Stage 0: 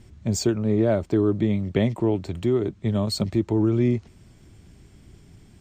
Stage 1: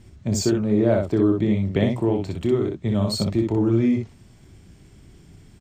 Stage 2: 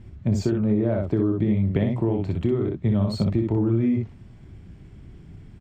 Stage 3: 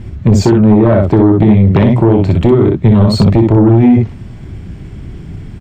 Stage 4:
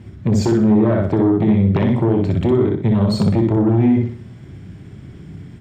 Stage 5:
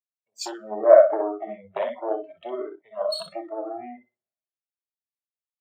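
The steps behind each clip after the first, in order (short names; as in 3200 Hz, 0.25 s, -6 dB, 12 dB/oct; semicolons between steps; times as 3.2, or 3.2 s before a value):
loudspeakers at several distances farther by 10 m -10 dB, 21 m -4 dB
compressor 4:1, threshold -21 dBFS, peak gain reduction 7 dB; tone controls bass +5 dB, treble -14 dB
sine folder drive 6 dB, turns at -9.5 dBFS; gain +7 dB
HPF 95 Hz; on a send: flutter echo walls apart 10.4 m, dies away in 0.44 s; on the sum: gain -8 dB
spectral noise reduction 24 dB; resonant high-pass 630 Hz, resonance Q 4.8; three-band expander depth 100%; gain -9.5 dB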